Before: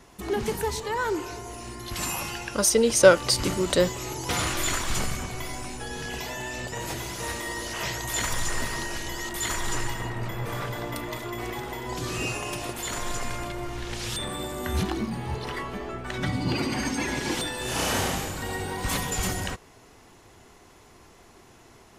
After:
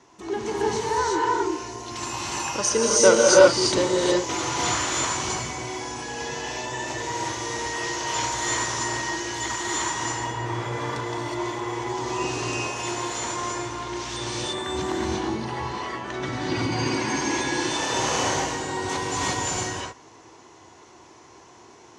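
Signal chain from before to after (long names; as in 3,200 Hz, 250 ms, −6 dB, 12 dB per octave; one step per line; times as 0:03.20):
loudspeaker in its box 110–7,600 Hz, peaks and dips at 180 Hz −8 dB, 330 Hz +7 dB, 960 Hz +7 dB, 6,100 Hz +6 dB
reverb whose tail is shaped and stops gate 390 ms rising, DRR −4.5 dB
level −4 dB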